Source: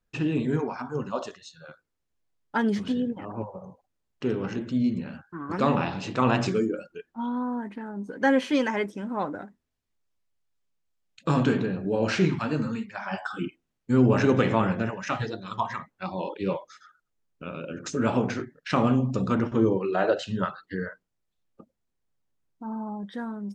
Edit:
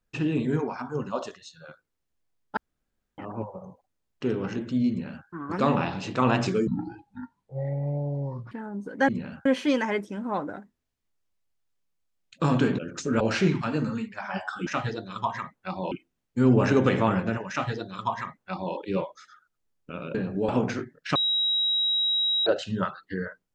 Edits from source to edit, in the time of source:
0:02.57–0:03.18: fill with room tone
0:04.90–0:05.27: duplicate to 0:08.31
0:06.67–0:07.74: play speed 58%
0:11.64–0:11.98: swap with 0:17.67–0:18.09
0:15.02–0:16.27: duplicate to 0:13.44
0:18.76–0:20.07: beep over 3,840 Hz −21.5 dBFS

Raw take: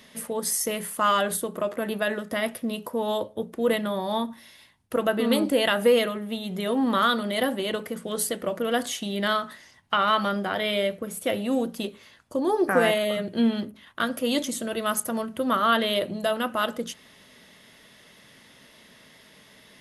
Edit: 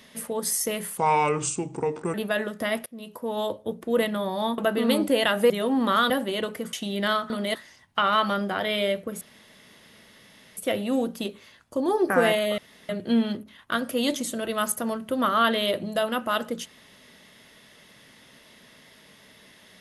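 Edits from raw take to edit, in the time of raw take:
0:00.98–0:01.85: play speed 75%
0:02.57–0:03.43: fade in equal-power, from −22 dB
0:04.29–0:05.00: remove
0:05.92–0:06.56: remove
0:07.16–0:07.41: move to 0:09.50
0:08.04–0:08.93: remove
0:11.16: splice in room tone 1.36 s
0:13.17: splice in room tone 0.31 s

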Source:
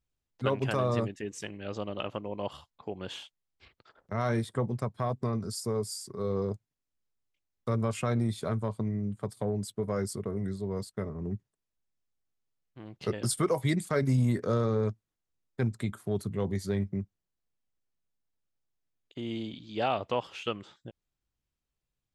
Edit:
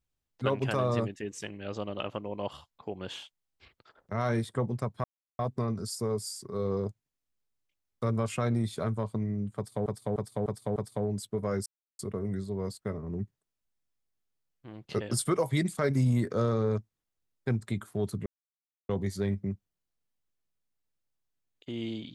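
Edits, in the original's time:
0:05.04: splice in silence 0.35 s
0:09.21–0:09.51: repeat, 5 plays
0:10.11: splice in silence 0.33 s
0:16.38: splice in silence 0.63 s

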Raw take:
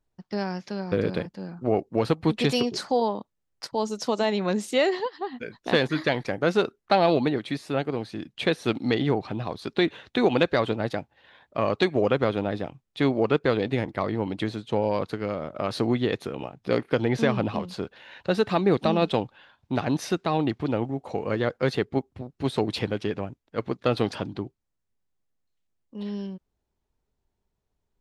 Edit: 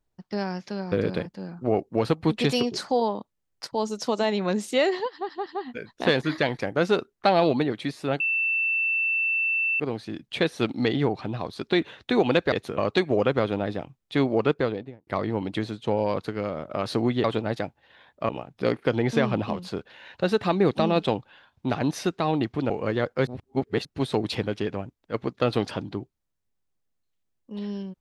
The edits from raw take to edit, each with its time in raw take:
0:05.12: stutter 0.17 s, 3 plays
0:07.86: insert tone 2,670 Hz −21.5 dBFS 1.60 s
0:10.58–0:11.63: swap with 0:16.09–0:16.35
0:13.31–0:13.92: fade out and dull
0:20.76–0:21.14: remove
0:21.71–0:22.29: reverse

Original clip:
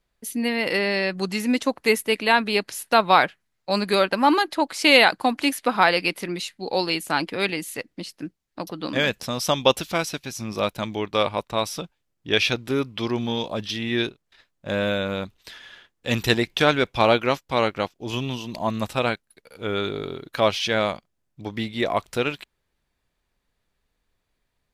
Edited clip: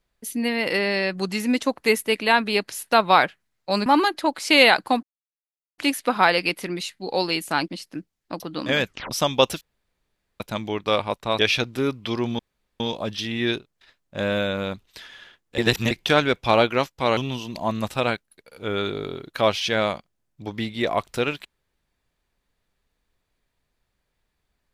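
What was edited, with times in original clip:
0:03.86–0:04.20: remove
0:05.37: splice in silence 0.75 s
0:07.27–0:07.95: remove
0:09.12: tape stop 0.26 s
0:09.88–0:10.67: fill with room tone
0:11.66–0:12.31: remove
0:13.31: splice in room tone 0.41 s
0:16.09–0:16.42: reverse
0:17.68–0:18.16: remove

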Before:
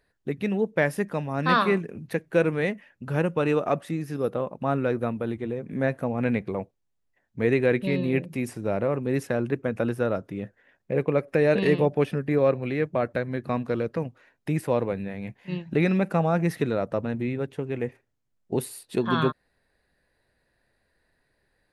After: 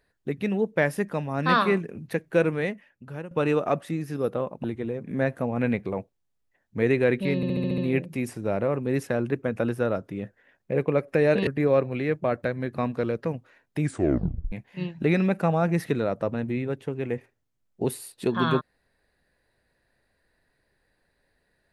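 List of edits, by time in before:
0:02.45–0:03.31: fade out, to −16.5 dB
0:04.64–0:05.26: remove
0:07.98: stutter 0.07 s, 7 plays
0:11.67–0:12.18: remove
0:14.52: tape stop 0.71 s

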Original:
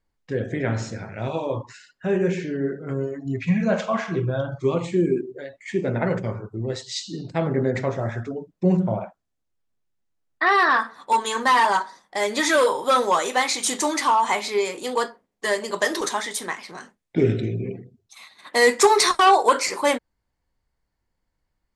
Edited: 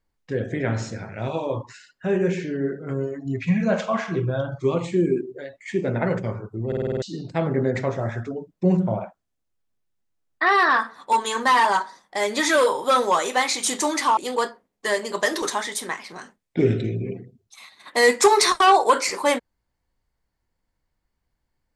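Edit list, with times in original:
0:06.67: stutter in place 0.05 s, 7 plays
0:14.17–0:14.76: remove

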